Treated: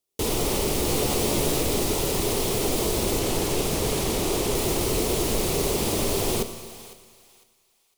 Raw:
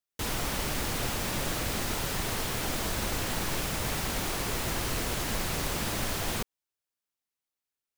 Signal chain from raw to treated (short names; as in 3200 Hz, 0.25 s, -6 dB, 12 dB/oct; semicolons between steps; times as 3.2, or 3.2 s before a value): fifteen-band EQ 400 Hz +11 dB, 1600 Hz -12 dB, 10000 Hz +3 dB; in parallel at +3 dB: limiter -26 dBFS, peak gain reduction 9 dB; 0.86–1.61 on the sum: doubler 14 ms -5.5 dB; thinning echo 0.504 s, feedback 29%, high-pass 770 Hz, level -16 dB; Schroeder reverb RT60 1.7 s, combs from 27 ms, DRR 10 dB; 3.19–4.55 Doppler distortion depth 0.27 ms